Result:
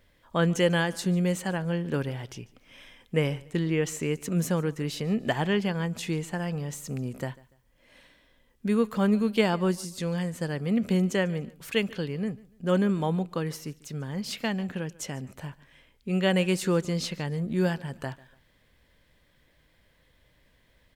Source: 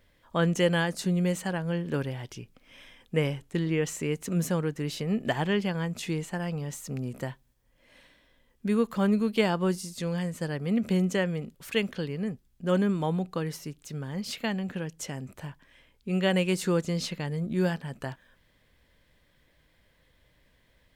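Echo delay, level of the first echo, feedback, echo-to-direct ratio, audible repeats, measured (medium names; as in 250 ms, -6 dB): 145 ms, -22.0 dB, 32%, -21.5 dB, 2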